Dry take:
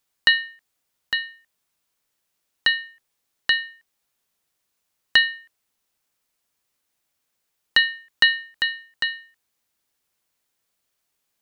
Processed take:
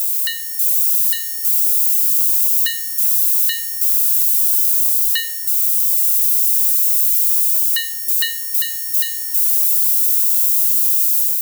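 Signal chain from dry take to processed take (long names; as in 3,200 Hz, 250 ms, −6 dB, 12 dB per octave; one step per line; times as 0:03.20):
spike at every zero crossing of −20 dBFS
first difference
automatic gain control gain up to 4 dB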